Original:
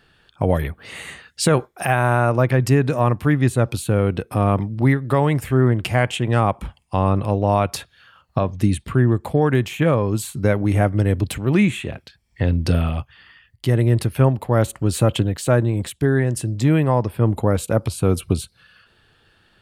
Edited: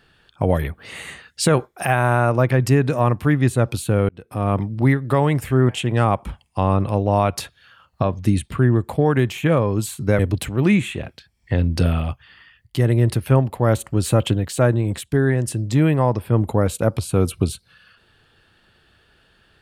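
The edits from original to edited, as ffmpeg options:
-filter_complex "[0:a]asplit=4[a][b][c][d];[a]atrim=end=4.09,asetpts=PTS-STARTPTS,afade=t=out:st=4.086:d=0.004:c=hsin[e];[b]atrim=start=4.09:end=5.692,asetpts=PTS-STARTPTS,afade=t=in:d=0.52[f];[c]atrim=start=6.048:end=10.552[g];[d]atrim=start=11.078[h];[e][f]concat=n=2:v=0:a=1[i];[i][g]acrossfade=d=0.004:c1=hsin:c2=hsin[j];[j][h]acrossfade=d=0.004:c1=hsin:c2=hsin"

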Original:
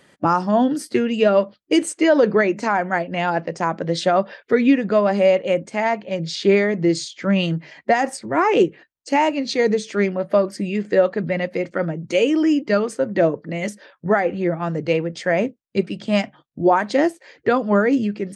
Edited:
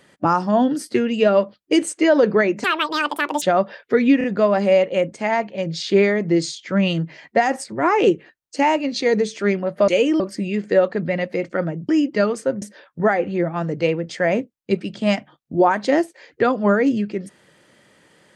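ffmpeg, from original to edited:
-filter_complex "[0:a]asplit=9[a][b][c][d][e][f][g][h][i];[a]atrim=end=2.644[j];[b]atrim=start=2.64:end=4.01,asetpts=PTS-STARTPTS,asetrate=77616,aresample=44100[k];[c]atrim=start=4.006:end=4.802[l];[d]atrim=start=4.768:end=4.802[m];[e]atrim=start=4.768:end=10.412[n];[f]atrim=start=12.098:end=12.422[o];[g]atrim=start=10.408:end=12.102[p];[h]atrim=start=12.418:end=13.152[q];[i]atrim=start=13.678[r];[j][k]acrossfade=d=0.004:c1=hsin:c2=hsin[s];[s][l]acrossfade=d=0.004:c1=hsin:c2=hsin[t];[t][m]acrossfade=d=0.004:c1=hsin:c2=hsin[u];[u][n]acrossfade=d=0.004:c1=hsin:c2=hsin[v];[v][o]acrossfade=d=0.004:c1=hsin:c2=hsin[w];[w][p]acrossfade=d=0.004:c1=hsin:c2=hsin[x];[x][q]acrossfade=d=0.004:c1=hsin:c2=hsin[y];[y][r]acrossfade=d=0.004:c1=hsin:c2=hsin"

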